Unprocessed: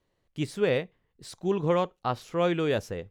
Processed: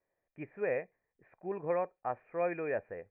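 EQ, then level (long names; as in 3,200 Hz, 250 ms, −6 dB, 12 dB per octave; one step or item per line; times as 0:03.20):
Chebyshev low-pass with heavy ripple 2,500 Hz, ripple 9 dB
low-shelf EQ 310 Hz −9 dB
−1.5 dB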